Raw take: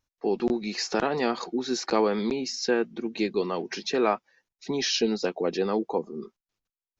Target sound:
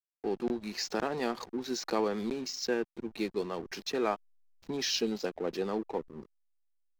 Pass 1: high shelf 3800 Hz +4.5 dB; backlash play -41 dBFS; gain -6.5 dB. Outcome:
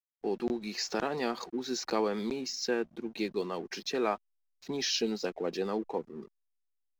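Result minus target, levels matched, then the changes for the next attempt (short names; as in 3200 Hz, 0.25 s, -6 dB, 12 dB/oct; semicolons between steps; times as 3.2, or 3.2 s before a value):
backlash: distortion -8 dB
change: backlash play -32 dBFS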